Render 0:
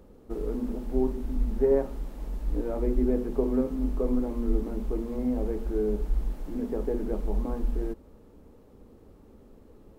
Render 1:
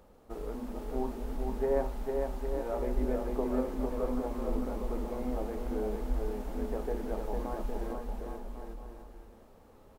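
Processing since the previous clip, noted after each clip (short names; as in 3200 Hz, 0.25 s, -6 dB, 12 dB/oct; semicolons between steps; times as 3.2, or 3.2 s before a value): resonant low shelf 510 Hz -7.5 dB, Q 1.5; on a send: bouncing-ball echo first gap 0.45 s, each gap 0.8×, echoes 5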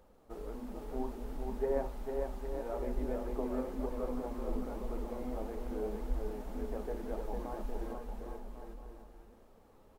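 flange 1.8 Hz, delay 1.8 ms, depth 5.4 ms, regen +67%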